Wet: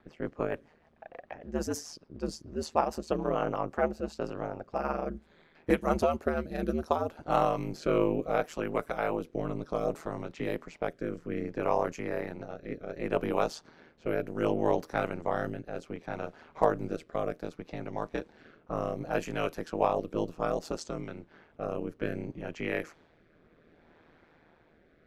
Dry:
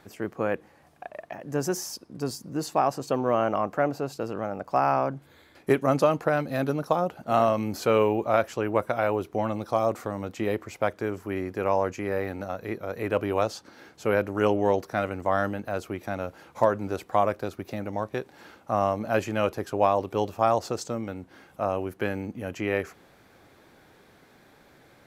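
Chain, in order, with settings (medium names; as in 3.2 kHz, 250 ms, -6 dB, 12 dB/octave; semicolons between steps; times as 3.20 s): level-controlled noise filter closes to 2.5 kHz, open at -22 dBFS; ring modulator 79 Hz; rotary cabinet horn 6.7 Hz, later 0.65 Hz, at 3.31 s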